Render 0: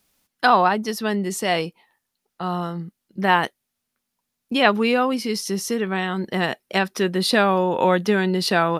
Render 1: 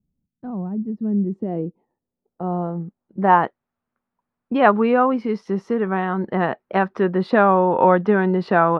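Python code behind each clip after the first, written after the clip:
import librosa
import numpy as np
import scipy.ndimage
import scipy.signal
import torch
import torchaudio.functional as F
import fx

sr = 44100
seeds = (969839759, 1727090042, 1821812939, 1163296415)

y = fx.filter_sweep_lowpass(x, sr, from_hz=170.0, to_hz=1200.0, start_s=0.64, end_s=3.55, q=1.3)
y = y * 10.0 ** (2.0 / 20.0)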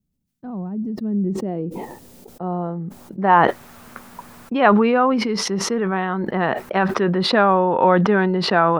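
y = fx.high_shelf(x, sr, hz=2500.0, db=8.0)
y = fx.sustainer(y, sr, db_per_s=26.0)
y = y * 10.0 ** (-1.5 / 20.0)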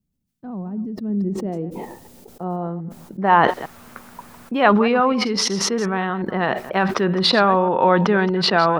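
y = fx.reverse_delay(x, sr, ms=122, wet_db=-14.0)
y = fx.dynamic_eq(y, sr, hz=4400.0, q=0.84, threshold_db=-36.0, ratio=4.0, max_db=6)
y = y * 10.0 ** (-1.0 / 20.0)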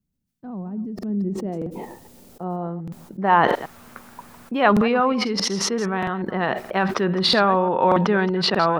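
y = fx.buffer_crackle(x, sr, first_s=0.94, period_s=0.63, block=2048, kind='repeat')
y = y * 10.0 ** (-2.0 / 20.0)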